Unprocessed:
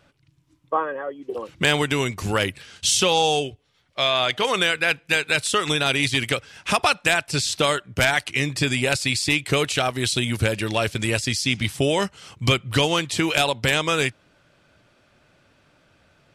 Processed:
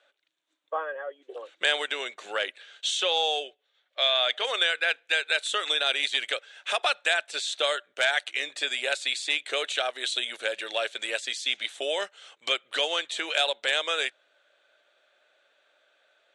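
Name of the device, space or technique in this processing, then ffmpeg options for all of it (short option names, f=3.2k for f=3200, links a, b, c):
phone speaker on a table: -filter_complex "[0:a]asettb=1/sr,asplit=3[a][b][c];[a]atrim=end=1.914[d];[b]atrim=start=1.91:end=4.02,asetpts=PTS-STARTPTS,afade=t=in:d=0.004:c=qsin,afade=t=out:st=2.106:d=0.004:c=qsin,highshelf=f=8.1k:g=-9.5[e];[c]atrim=start=4.016[f];[d][e]acrossfade=d=0.004:c1=hsin:c2=qsin[g];[g][f]acrossfade=d=0.004:c1=qsin:c2=hsin,highpass=f=470:w=0.5412,highpass=f=470:w=1.3066,equalizer=f=600:t=q:w=4:g=4,equalizer=f=1k:t=q:w=4:g=-6,equalizer=f=1.6k:t=q:w=4:g=5,equalizer=f=3.6k:t=q:w=4:g=9,equalizer=f=5.1k:t=q:w=4:g=-10,lowpass=f=8.6k:w=0.5412,lowpass=f=8.6k:w=1.3066,volume=-7dB"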